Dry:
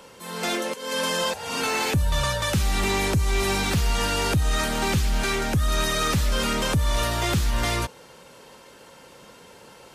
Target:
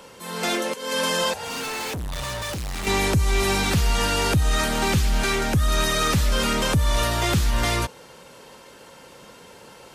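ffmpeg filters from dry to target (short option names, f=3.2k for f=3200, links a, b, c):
-filter_complex "[0:a]asettb=1/sr,asplit=3[a][b][c];[a]atrim=end=1.444[d];[b]atrim=start=1.44:end=2.87,asetpts=PTS-STARTPTS,afade=t=in:d=0.004:c=qsin,afade=t=out:st=1.426:d=0.004:c=qsin,asoftclip=type=hard:threshold=-30dB[e];[c]atrim=start=2.866[f];[d][e]acrossfade=d=0.004:c1=hsin:c2=qsin[g];[g][f]acrossfade=d=0.004:c1=qsin:c2=hsin,volume=2dB"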